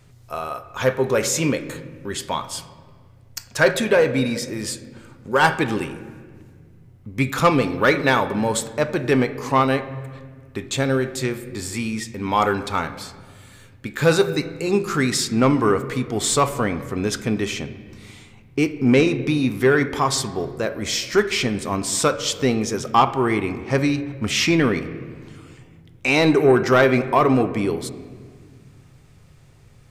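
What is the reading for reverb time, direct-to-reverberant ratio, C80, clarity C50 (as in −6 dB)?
1.8 s, 10.0 dB, 14.0 dB, 13.0 dB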